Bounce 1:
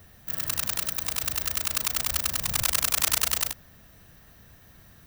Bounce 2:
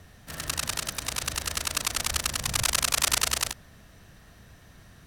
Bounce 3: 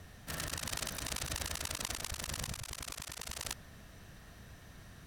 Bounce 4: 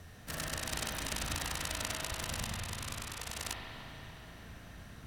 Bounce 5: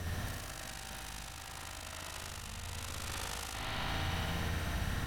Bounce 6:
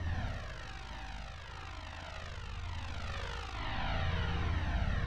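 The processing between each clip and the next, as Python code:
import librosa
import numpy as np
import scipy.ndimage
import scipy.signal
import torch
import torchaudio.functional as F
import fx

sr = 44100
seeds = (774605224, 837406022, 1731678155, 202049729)

y1 = scipy.signal.sosfilt(scipy.signal.butter(2, 9800.0, 'lowpass', fs=sr, output='sos'), x)
y1 = F.gain(torch.from_numpy(y1), 2.5).numpy()
y2 = fx.over_compress(y1, sr, threshold_db=-35.0, ratio=-1.0)
y2 = F.gain(torch.from_numpy(y2), -6.5).numpy()
y3 = fx.rev_spring(y2, sr, rt60_s=3.7, pass_ms=(36, 58), chirp_ms=40, drr_db=-0.5)
y4 = fx.over_compress(y3, sr, threshold_db=-49.0, ratio=-1.0)
y4 = fx.room_flutter(y4, sr, wall_m=10.2, rt60_s=1.1)
y4 = F.gain(torch.from_numpy(y4), 4.5).numpy()
y5 = fx.air_absorb(y4, sr, metres=190.0)
y5 = fx.comb_cascade(y5, sr, direction='falling', hz=1.1)
y5 = F.gain(torch.from_numpy(y5), 5.5).numpy()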